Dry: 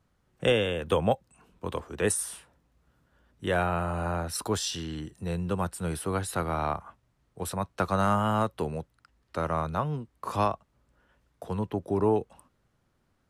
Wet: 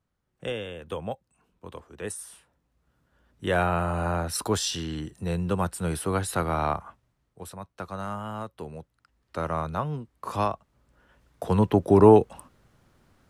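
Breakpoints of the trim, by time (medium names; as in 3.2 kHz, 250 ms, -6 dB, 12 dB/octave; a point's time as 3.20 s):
2.19 s -8.5 dB
3.64 s +3 dB
6.84 s +3 dB
7.57 s -9 dB
8.46 s -9 dB
9.41 s 0 dB
10.48 s 0 dB
11.66 s +10 dB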